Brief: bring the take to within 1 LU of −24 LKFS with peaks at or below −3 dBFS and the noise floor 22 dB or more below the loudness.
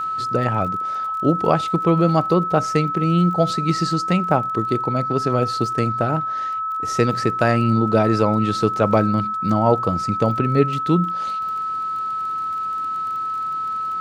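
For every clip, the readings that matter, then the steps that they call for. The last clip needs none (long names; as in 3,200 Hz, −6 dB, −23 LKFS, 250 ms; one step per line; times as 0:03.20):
crackle rate 24 per second; interfering tone 1,300 Hz; level of the tone −22 dBFS; integrated loudness −20.0 LKFS; sample peak −2.0 dBFS; target loudness −24.0 LKFS
→ click removal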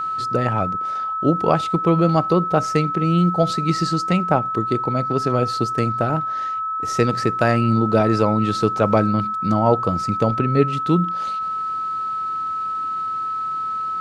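crackle rate 0.071 per second; interfering tone 1,300 Hz; level of the tone −22 dBFS
→ notch filter 1,300 Hz, Q 30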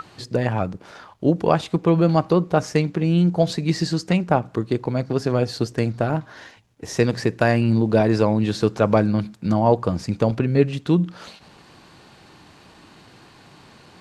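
interfering tone none found; integrated loudness −21.0 LKFS; sample peak −3.0 dBFS; target loudness −24.0 LKFS
→ level −3 dB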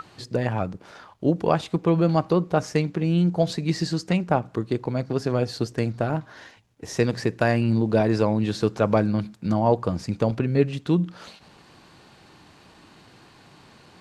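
integrated loudness −24.0 LKFS; sample peak −6.0 dBFS; background noise floor −53 dBFS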